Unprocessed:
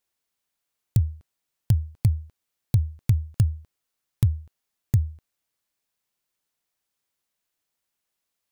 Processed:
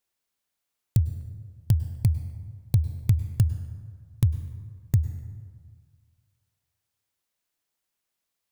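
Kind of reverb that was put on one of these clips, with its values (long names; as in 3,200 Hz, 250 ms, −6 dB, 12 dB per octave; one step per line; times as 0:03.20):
dense smooth reverb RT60 1.8 s, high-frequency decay 0.5×, pre-delay 90 ms, DRR 12 dB
level −1 dB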